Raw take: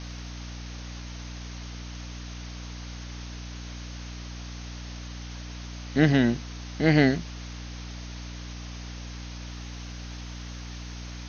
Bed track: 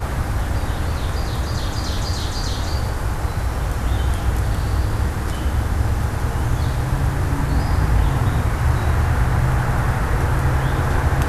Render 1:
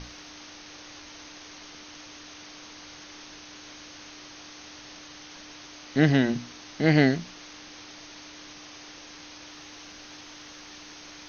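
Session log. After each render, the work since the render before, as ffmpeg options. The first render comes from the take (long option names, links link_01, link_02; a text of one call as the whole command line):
ffmpeg -i in.wav -af "bandreject=frequency=60:width_type=h:width=6,bandreject=frequency=120:width_type=h:width=6,bandreject=frequency=180:width_type=h:width=6,bandreject=frequency=240:width_type=h:width=6" out.wav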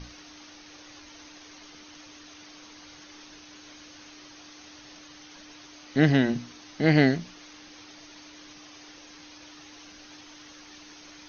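ffmpeg -i in.wav -af "afftdn=noise_reduction=6:noise_floor=-46" out.wav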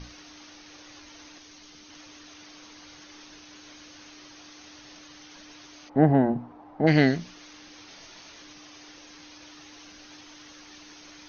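ffmpeg -i in.wav -filter_complex "[0:a]asettb=1/sr,asplit=3[link_01][link_02][link_03];[link_01]atrim=end=1.384[link_04];[link_02]atrim=start=1.38:end=1.9,asetpts=PTS-STARTPTS,afade=type=in:duration=0.004:curve=qsin,afade=type=out:start_time=0.516:duration=0.004:curve=qsin,acrossover=split=310|3000[link_05][link_06][link_07];[link_06]acompressor=threshold=-55dB:ratio=3:attack=3.2:release=140:knee=2.83:detection=peak[link_08];[link_05][link_08][link_07]amix=inputs=3:normalize=0[link_09];[link_03]atrim=start=1.896[link_10];[link_04][link_09]acrossfade=duration=0.004:curve1=hsin:curve2=qsin[link_11];[link_11][link_10]acrossfade=duration=0.004:curve1=qsin:curve2=hsin,asplit=3[link_12][link_13][link_14];[link_12]afade=type=out:start_time=5.88:duration=0.02[link_15];[link_13]lowpass=frequency=830:width_type=q:width=3.4,afade=type=in:start_time=5.88:duration=0.02,afade=type=out:start_time=6.86:duration=0.02[link_16];[link_14]afade=type=in:start_time=6.86:duration=0.02[link_17];[link_15][link_16][link_17]amix=inputs=3:normalize=0,asettb=1/sr,asplit=3[link_18][link_19][link_20];[link_18]atrim=end=7.854[link_21];[link_19]atrim=start=7.85:end=8.42,asetpts=PTS-STARTPTS,afade=type=in:duration=0.004:curve=qsin,afade=type=out:start_time=0.566:duration=0.004:curve=qsin,asplit=2[link_22][link_23];[link_23]adelay=25,volume=-4dB[link_24];[link_22][link_24]amix=inputs=2:normalize=0,atrim=end_sample=25137[link_25];[link_20]atrim=start=8.416[link_26];[link_21][link_25]acrossfade=duration=0.004:curve1=hsin:curve2=qsin[link_27];[link_27][link_26]acrossfade=duration=0.004:curve1=qsin:curve2=hsin" out.wav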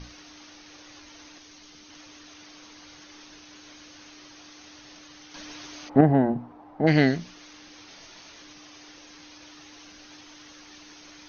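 ffmpeg -i in.wav -filter_complex "[0:a]asettb=1/sr,asplit=3[link_01][link_02][link_03];[link_01]atrim=end=5.344[link_04];[link_02]atrim=start=5.34:end=6.01,asetpts=PTS-STARTPTS,afade=type=in:duration=0.004:curve=qsin,afade=type=out:start_time=0.666:duration=0.004:curve=qsin,acontrast=59[link_05];[link_03]atrim=start=6.006[link_06];[link_04][link_05]acrossfade=duration=0.004:curve1=hsin:curve2=qsin[link_07];[link_07][link_06]acrossfade=duration=0.004:curve1=qsin:curve2=hsin" out.wav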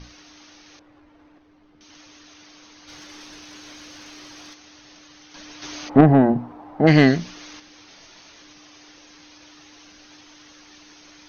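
ffmpeg -i in.wav -filter_complex "[0:a]asettb=1/sr,asplit=3[link_01][link_02][link_03];[link_01]atrim=end=0.794[link_04];[link_02]atrim=start=0.79:end=1.81,asetpts=PTS-STARTPTS,afade=type=in:duration=0.004:curve=qsin,afade=type=out:start_time=1.016:duration=0.004:curve=qsin,adynamicsmooth=sensitivity=3:basefreq=1100[link_05];[link_03]atrim=start=1.806[link_06];[link_04][link_05]acrossfade=duration=0.004:curve1=hsin:curve2=qsin[link_07];[link_07][link_06]acrossfade=duration=0.004:curve1=qsin:curve2=hsin,asplit=3[link_08][link_09][link_10];[link_08]afade=type=out:start_time=2.87:duration=0.02[link_11];[link_09]aeval=exprs='0.0168*sin(PI/2*1.41*val(0)/0.0168)':channel_layout=same,afade=type=in:start_time=2.87:duration=0.02,afade=type=out:start_time=4.53:duration=0.02[link_12];[link_10]afade=type=in:start_time=4.53:duration=0.02[link_13];[link_11][link_12][link_13]amix=inputs=3:normalize=0,asettb=1/sr,asplit=3[link_14][link_15][link_16];[link_14]atrim=end=5.624[link_17];[link_15]atrim=start=5.62:end=7.6,asetpts=PTS-STARTPTS,afade=type=in:duration=0.004:curve=qsin,afade=type=out:start_time=1.976:duration=0.004:curve=qsin,acontrast=82[link_18];[link_16]atrim=start=7.596[link_19];[link_17][link_18]acrossfade=duration=0.004:curve1=hsin:curve2=qsin[link_20];[link_20][link_19]acrossfade=duration=0.004:curve1=qsin:curve2=hsin" out.wav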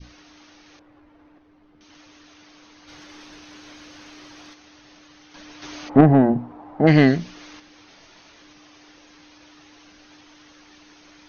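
ffmpeg -i in.wav -af "adynamicequalizer=threshold=0.0178:dfrequency=1100:dqfactor=0.88:tfrequency=1100:tqfactor=0.88:attack=5:release=100:ratio=0.375:range=2:mode=cutabove:tftype=bell,lowpass=frequency=3300:poles=1" out.wav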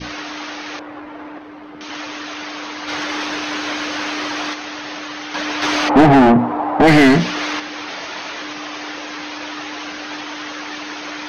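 ffmpeg -i in.wav -filter_complex "[0:a]asplit=2[link_01][link_02];[link_02]highpass=frequency=720:poles=1,volume=33dB,asoftclip=type=tanh:threshold=-2dB[link_03];[link_01][link_03]amix=inputs=2:normalize=0,lowpass=frequency=2000:poles=1,volume=-6dB" out.wav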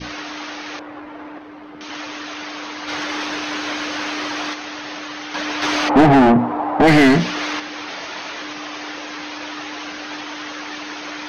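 ffmpeg -i in.wav -af "volume=-1.5dB" out.wav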